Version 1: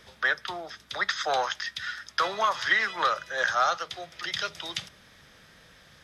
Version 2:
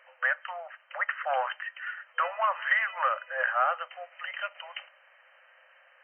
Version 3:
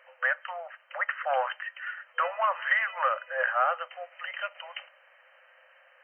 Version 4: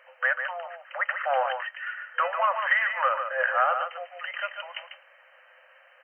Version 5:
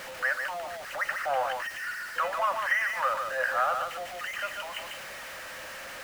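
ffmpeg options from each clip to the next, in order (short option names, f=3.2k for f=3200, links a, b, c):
-af "afftfilt=real='re*between(b*sr/4096,500,3100)':imag='im*between(b*sr/4096,500,3100)':win_size=4096:overlap=0.75,volume=-1.5dB"
-af "equalizer=f=450:w=2.5:g=6"
-filter_complex "[0:a]asplit=2[a][b];[b]adelay=145.8,volume=-7dB,highshelf=f=4k:g=-3.28[c];[a][c]amix=inputs=2:normalize=0,volume=2dB"
-af "aeval=exprs='val(0)+0.5*0.0266*sgn(val(0))':c=same,volume=-4.5dB"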